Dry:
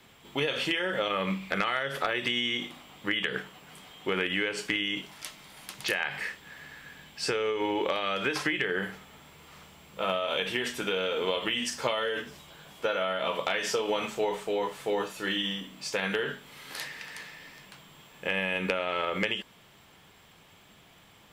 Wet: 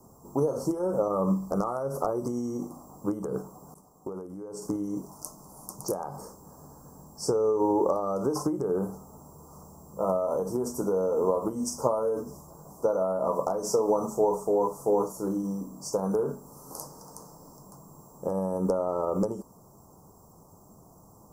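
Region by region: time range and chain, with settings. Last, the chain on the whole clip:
3.74–4.62 expander -44 dBFS + compressor 5:1, threshold -37 dBFS
whole clip: elliptic band-stop 1100–5600 Hz, stop band 40 dB; bell 2900 Hz -15 dB 1.4 oct; gain +6.5 dB

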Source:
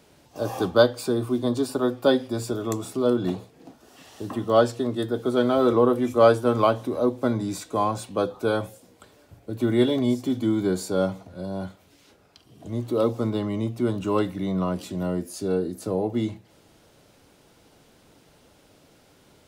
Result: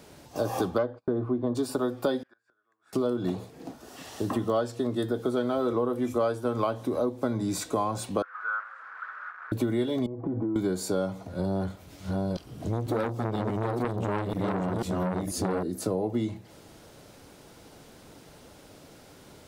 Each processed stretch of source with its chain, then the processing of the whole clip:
0.78–1.55 self-modulated delay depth 0.12 ms + LPF 1400 Hz + gate -41 dBFS, range -34 dB
2.23–2.93 band-pass 1600 Hz, Q 12 + flipped gate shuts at -49 dBFS, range -25 dB
8.22–9.52 delta modulation 64 kbps, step -27 dBFS + Butterworth band-pass 1400 Hz, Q 3.3
10.06–10.56 LPF 1200 Hz 24 dB/oct + comb 6.1 ms, depth 58% + compressor 12:1, threshold -30 dBFS
11.39–15.63 reverse delay 0.491 s, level -3 dB + low shelf 120 Hz +9.5 dB + core saturation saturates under 1300 Hz
whole clip: bell 2900 Hz -2.5 dB; compressor 6:1, threshold -30 dBFS; gain +5.5 dB

